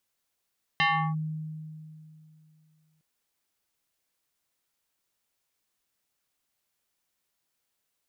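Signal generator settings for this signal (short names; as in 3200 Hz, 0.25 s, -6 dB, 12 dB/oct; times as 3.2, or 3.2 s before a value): FM tone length 2.21 s, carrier 156 Hz, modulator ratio 6.23, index 3.1, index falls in 0.35 s linear, decay 2.72 s, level -19.5 dB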